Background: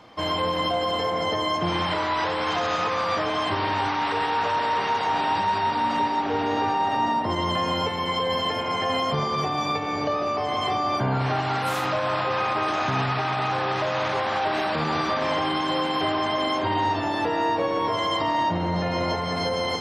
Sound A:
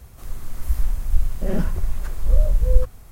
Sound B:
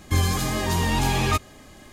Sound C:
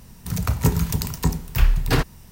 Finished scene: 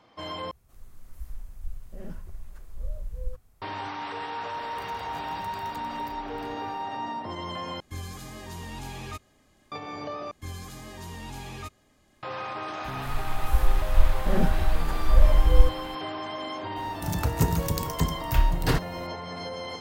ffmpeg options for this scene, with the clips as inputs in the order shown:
ffmpeg -i bed.wav -i cue0.wav -i cue1.wav -i cue2.wav -filter_complex "[1:a]asplit=2[link_01][link_02];[3:a]asplit=2[link_03][link_04];[2:a]asplit=2[link_05][link_06];[0:a]volume=-10dB[link_07];[link_03]acompressor=threshold=-29dB:ratio=6:attack=3.2:release=140:knee=1:detection=peak[link_08];[link_04]bandreject=frequency=2400:width=17[link_09];[link_07]asplit=4[link_10][link_11][link_12][link_13];[link_10]atrim=end=0.514[link_14];[link_01]atrim=end=3.11,asetpts=PTS-STARTPTS,volume=-17.5dB[link_15];[link_11]atrim=start=3.616:end=7.804[link_16];[link_05]atrim=end=1.92,asetpts=PTS-STARTPTS,volume=-16dB[link_17];[link_12]atrim=start=9.716:end=10.314[link_18];[link_06]atrim=end=1.92,asetpts=PTS-STARTPTS,volume=-17dB[link_19];[link_13]atrim=start=12.226[link_20];[link_08]atrim=end=2.31,asetpts=PTS-STARTPTS,volume=-16.5dB,afade=type=in:duration=0.004:curve=hsin,afade=type=out:start_time=2.306:duration=0.004:curve=hsin,adelay=4520[link_21];[link_02]atrim=end=3.11,asetpts=PTS-STARTPTS,volume=-1dB,afade=type=in:duration=0.004:curve=hsin,afade=type=out:start_time=3.106:duration=0.004:curve=hsin,adelay=566244S[link_22];[link_09]atrim=end=2.31,asetpts=PTS-STARTPTS,volume=-4.5dB,afade=type=in:duration=0.004:curve=hsin,afade=type=out:start_time=2.306:duration=0.004:curve=hsin,adelay=16760[link_23];[link_14][link_15]acrossfade=duration=0.004:curve1=hsin:curve2=hsin[link_24];[link_24][link_16]acrossfade=duration=0.004:curve1=hsin:curve2=hsin[link_25];[link_25][link_17]acrossfade=duration=0.004:curve1=hsin:curve2=hsin[link_26];[link_26][link_18]acrossfade=duration=0.004:curve1=hsin:curve2=hsin[link_27];[link_27][link_19]acrossfade=duration=0.004:curve1=hsin:curve2=hsin[link_28];[link_28][link_20]acrossfade=duration=0.004:curve1=hsin:curve2=hsin[link_29];[link_29][link_21][link_22][link_23]amix=inputs=4:normalize=0" out.wav

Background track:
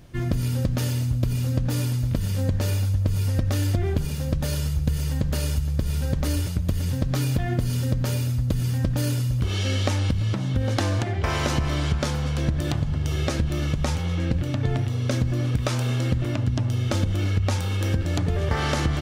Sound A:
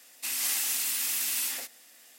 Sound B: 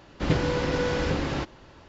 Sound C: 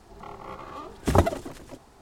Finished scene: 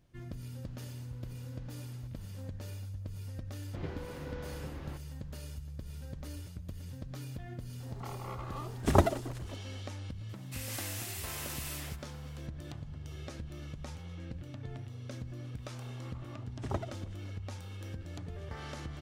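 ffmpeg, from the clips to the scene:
ffmpeg -i bed.wav -i cue0.wav -i cue1.wav -i cue2.wav -filter_complex "[2:a]asplit=2[link_01][link_02];[3:a]asplit=2[link_03][link_04];[0:a]volume=-19dB[link_05];[link_01]acompressor=threshold=-47dB:ratio=6:attack=3.2:release=140:knee=1:detection=peak[link_06];[link_02]lowpass=frequency=2800:poles=1[link_07];[1:a]highshelf=frequency=3100:gain=-8.5[link_08];[link_04]lowpass=7200[link_09];[link_06]atrim=end=1.88,asetpts=PTS-STARTPTS,volume=-12dB,afade=type=in:duration=0.004:curve=hsin,afade=type=out:start_time=1.876:duration=0.004:curve=hsin,adelay=630[link_10];[link_07]atrim=end=1.88,asetpts=PTS-STARTPTS,volume=-17.5dB,afade=type=in:duration=0.004:curve=hsin,afade=type=out:start_time=1.876:duration=0.004:curve=hsin,adelay=155673S[link_11];[link_03]atrim=end=2.01,asetpts=PTS-STARTPTS,volume=-4dB,afade=type=in:duration=0.004:curve=hsin,afade=type=out:start_time=2.006:duration=0.004:curve=hsin,adelay=7800[link_12];[link_08]atrim=end=2.18,asetpts=PTS-STARTPTS,volume=-5.5dB,afade=type=in:duration=0.004:curve=hsin,afade=type=out:start_time=2.176:duration=0.004:curve=hsin,adelay=10290[link_13];[link_09]atrim=end=2.01,asetpts=PTS-STARTPTS,volume=-16.5dB,afade=type=in:duration=0.004:curve=hsin,afade=type=out:start_time=2.006:duration=0.004:curve=hsin,adelay=686196S[link_14];[link_05][link_10][link_11][link_12][link_13][link_14]amix=inputs=6:normalize=0" out.wav

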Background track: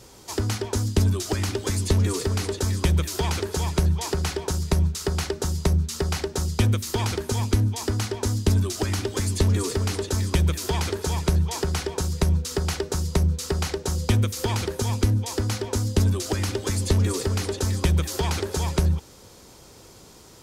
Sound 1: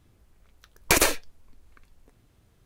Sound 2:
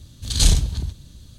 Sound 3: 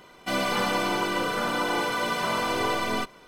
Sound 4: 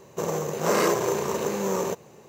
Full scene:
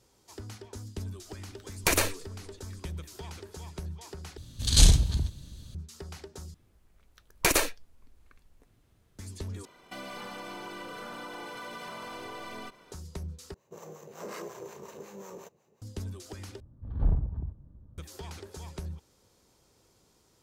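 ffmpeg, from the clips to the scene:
ffmpeg -i bed.wav -i cue0.wav -i cue1.wav -i cue2.wav -i cue3.wav -filter_complex "[1:a]asplit=2[link_01][link_02];[2:a]asplit=2[link_03][link_04];[0:a]volume=-17.5dB[link_05];[3:a]acompressor=threshold=-32dB:ratio=6:attack=3.2:release=140:knee=1:detection=peak[link_06];[4:a]acrossover=split=650[link_07][link_08];[link_07]aeval=exprs='val(0)*(1-0.7/2+0.7/2*cos(2*PI*5.5*n/s))':channel_layout=same[link_09];[link_08]aeval=exprs='val(0)*(1-0.7/2-0.7/2*cos(2*PI*5.5*n/s))':channel_layout=same[link_10];[link_09][link_10]amix=inputs=2:normalize=0[link_11];[link_04]lowpass=frequency=1100:width=0.5412,lowpass=frequency=1100:width=1.3066[link_12];[link_05]asplit=6[link_13][link_14][link_15][link_16][link_17][link_18];[link_13]atrim=end=4.374[link_19];[link_03]atrim=end=1.38,asetpts=PTS-STARTPTS,volume=-2dB[link_20];[link_14]atrim=start=5.746:end=6.544[link_21];[link_02]atrim=end=2.65,asetpts=PTS-STARTPTS,volume=-4dB[link_22];[link_15]atrim=start=9.186:end=9.654[link_23];[link_06]atrim=end=3.27,asetpts=PTS-STARTPTS,volume=-6dB[link_24];[link_16]atrim=start=12.916:end=13.544[link_25];[link_11]atrim=end=2.28,asetpts=PTS-STARTPTS,volume=-15.5dB[link_26];[link_17]atrim=start=15.816:end=16.604[link_27];[link_12]atrim=end=1.38,asetpts=PTS-STARTPTS,volume=-9dB[link_28];[link_18]atrim=start=17.976[link_29];[link_01]atrim=end=2.65,asetpts=PTS-STARTPTS,volume=-5dB,afade=type=in:duration=0.004:curve=hsin,afade=type=out:start_time=2.646:duration=0.004:curve=hsin,adelay=960[link_30];[link_19][link_20]acrossfade=duration=0.004:curve1=hsin:curve2=hsin[link_31];[link_31][link_21]acrossfade=duration=0.004:curve1=hsin:curve2=hsin[link_32];[link_32][link_22]acrossfade=duration=0.004:curve1=hsin:curve2=hsin[link_33];[link_33][link_23]acrossfade=duration=0.004:curve1=hsin:curve2=hsin[link_34];[link_34][link_24]acrossfade=duration=0.004:curve1=hsin:curve2=hsin[link_35];[link_35][link_25]acrossfade=duration=0.004:curve1=hsin:curve2=hsin[link_36];[link_36][link_26]acrossfade=duration=0.004:curve1=hsin:curve2=hsin[link_37];[link_37][link_27]acrossfade=duration=0.004:curve1=hsin:curve2=hsin[link_38];[link_38][link_28]acrossfade=duration=0.004:curve1=hsin:curve2=hsin[link_39];[link_39][link_29]acrossfade=duration=0.004:curve1=hsin:curve2=hsin[link_40];[link_40][link_30]amix=inputs=2:normalize=0" out.wav

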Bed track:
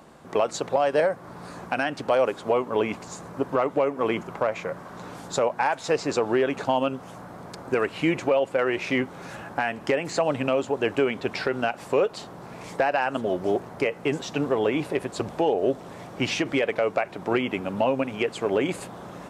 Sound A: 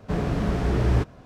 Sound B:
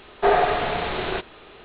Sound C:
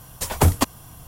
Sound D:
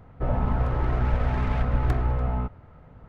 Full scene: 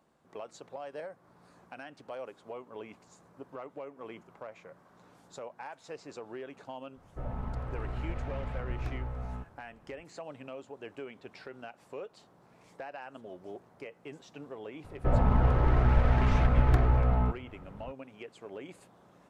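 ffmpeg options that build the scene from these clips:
ffmpeg -i bed.wav -i cue0.wav -i cue1.wav -i cue2.wav -i cue3.wav -filter_complex "[4:a]asplit=2[link_01][link_02];[0:a]volume=-20dB[link_03];[link_01]atrim=end=3.08,asetpts=PTS-STARTPTS,volume=-12.5dB,afade=type=in:duration=0.004:curve=hsin,afade=type=out:start_time=3.076:duration=0.004:curve=hsin,adelay=6960[link_04];[link_02]atrim=end=3.08,asetpts=PTS-STARTPTS,afade=type=in:duration=0.004:curve=hsin,afade=type=out:start_time=3.076:duration=0.004:curve=hsin,adelay=14840[link_05];[link_03][link_04][link_05]amix=inputs=3:normalize=0" out.wav

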